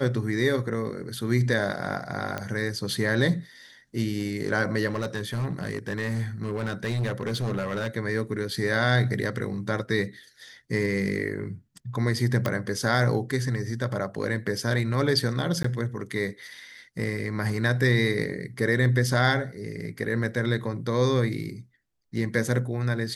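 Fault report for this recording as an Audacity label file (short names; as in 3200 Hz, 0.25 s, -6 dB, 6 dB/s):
2.380000	2.380000	pop -16 dBFS
4.880000	7.880000	clipped -23.5 dBFS
12.460000	12.460000	pop -12 dBFS
15.630000	15.640000	gap 14 ms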